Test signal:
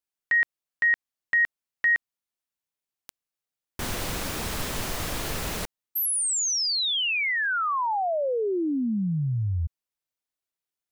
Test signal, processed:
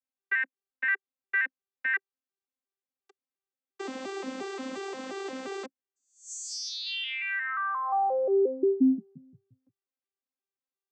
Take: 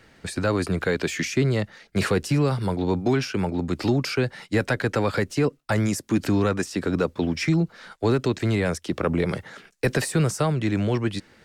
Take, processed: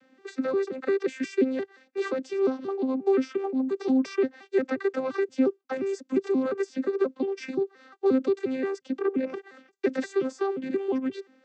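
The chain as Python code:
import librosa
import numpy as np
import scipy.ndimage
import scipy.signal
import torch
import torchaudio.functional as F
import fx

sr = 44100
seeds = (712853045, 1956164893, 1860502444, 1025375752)

y = fx.vocoder_arp(x, sr, chord='bare fifth', root=60, every_ms=176)
y = F.gain(torch.from_numpy(y), -2.5).numpy()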